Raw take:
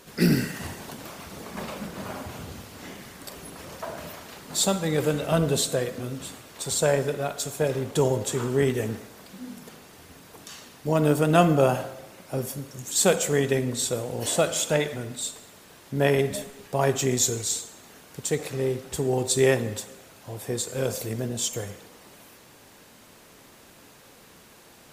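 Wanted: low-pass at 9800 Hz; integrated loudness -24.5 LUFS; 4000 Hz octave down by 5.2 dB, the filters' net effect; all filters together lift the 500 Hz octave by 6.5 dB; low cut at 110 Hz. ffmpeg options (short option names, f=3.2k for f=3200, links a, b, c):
-af "highpass=110,lowpass=9.8k,equalizer=f=500:t=o:g=8,equalizer=f=4k:t=o:g=-6.5,volume=-3dB"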